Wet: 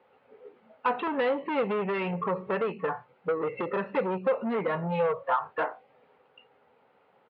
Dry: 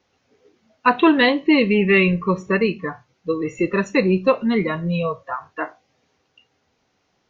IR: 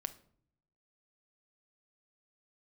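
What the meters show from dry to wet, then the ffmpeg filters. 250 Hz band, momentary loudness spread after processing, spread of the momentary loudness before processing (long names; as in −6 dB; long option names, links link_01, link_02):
−15.5 dB, 5 LU, 15 LU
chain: -af "equalizer=frequency=440:width_type=o:width=0.57:gain=7.5,acompressor=threshold=-21dB:ratio=5,aresample=11025,asoftclip=type=tanh:threshold=-25.5dB,aresample=44100,highpass=150,equalizer=frequency=330:width_type=q:width=4:gain=-7,equalizer=frequency=540:width_type=q:width=4:gain=6,equalizer=frequency=870:width_type=q:width=4:gain=9,equalizer=frequency=1300:width_type=q:width=4:gain=6,lowpass=frequency=2900:width=0.5412,lowpass=frequency=2900:width=1.3066"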